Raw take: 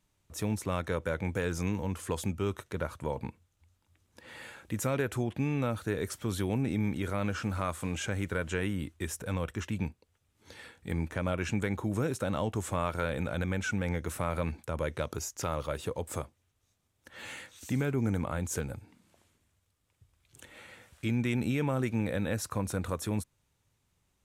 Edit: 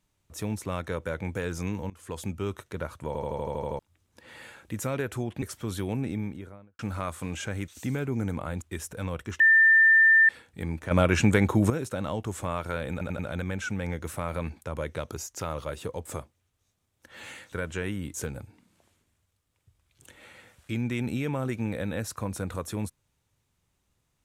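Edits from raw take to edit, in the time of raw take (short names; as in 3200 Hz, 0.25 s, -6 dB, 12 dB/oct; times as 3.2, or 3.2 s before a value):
1.9–2.42 fade in equal-power, from -21.5 dB
3.07 stutter in place 0.08 s, 9 plays
5.42–6.03 cut
6.58–7.4 studio fade out
8.29–8.91 swap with 17.54–18.48
9.69–10.58 bleep 1790 Hz -14.5 dBFS
11.2–11.99 gain +10 dB
13.21 stutter 0.09 s, 4 plays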